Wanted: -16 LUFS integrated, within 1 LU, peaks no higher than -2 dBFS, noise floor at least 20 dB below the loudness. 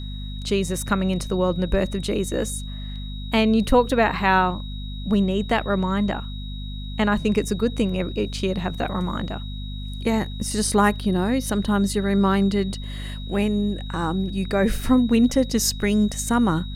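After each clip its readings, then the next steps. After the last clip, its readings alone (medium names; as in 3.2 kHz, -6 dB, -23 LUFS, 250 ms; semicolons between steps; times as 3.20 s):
hum 50 Hz; highest harmonic 250 Hz; hum level -29 dBFS; steady tone 3.8 kHz; tone level -40 dBFS; loudness -22.5 LUFS; peak level -4.5 dBFS; loudness target -16.0 LUFS
-> de-hum 50 Hz, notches 5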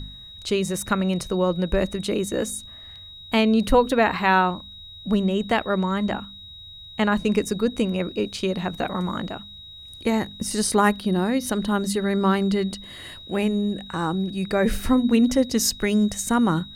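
hum not found; steady tone 3.8 kHz; tone level -40 dBFS
-> band-stop 3.8 kHz, Q 30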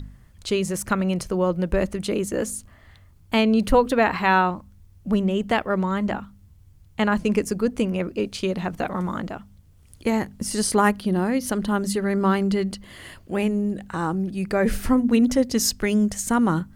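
steady tone not found; loudness -23.0 LUFS; peak level -5.0 dBFS; loudness target -16.0 LUFS
-> trim +7 dB; peak limiter -2 dBFS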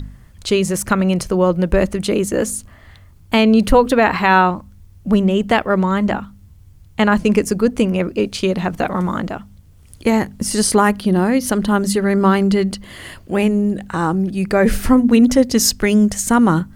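loudness -16.5 LUFS; peak level -2.0 dBFS; noise floor -45 dBFS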